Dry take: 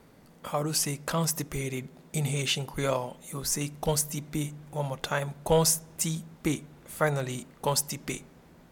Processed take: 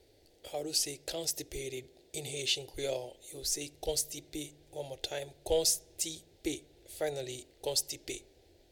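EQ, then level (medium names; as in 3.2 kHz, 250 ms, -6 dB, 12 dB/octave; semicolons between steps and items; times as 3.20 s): FFT filter 100 Hz 0 dB, 190 Hz -26 dB, 350 Hz +2 dB, 780 Hz -5 dB, 1.1 kHz -27 dB, 1.7 kHz -9 dB, 4.2 kHz +6 dB, 6 kHz +1 dB, 12 kHz -3 dB; -4.0 dB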